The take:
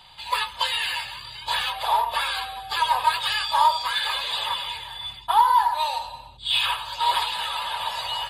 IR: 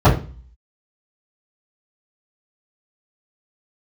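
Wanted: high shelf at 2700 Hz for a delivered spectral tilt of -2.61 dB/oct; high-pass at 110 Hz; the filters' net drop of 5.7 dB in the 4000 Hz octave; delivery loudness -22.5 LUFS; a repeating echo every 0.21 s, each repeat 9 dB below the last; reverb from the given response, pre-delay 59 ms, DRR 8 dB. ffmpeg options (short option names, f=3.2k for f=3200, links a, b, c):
-filter_complex "[0:a]highpass=110,highshelf=f=2.7k:g=-3.5,equalizer=f=4k:t=o:g=-4.5,aecho=1:1:210|420|630|840:0.355|0.124|0.0435|0.0152,asplit=2[a][b];[1:a]atrim=start_sample=2205,adelay=59[c];[b][c]afir=irnorm=-1:irlink=0,volume=-33dB[d];[a][d]amix=inputs=2:normalize=0,volume=1.5dB"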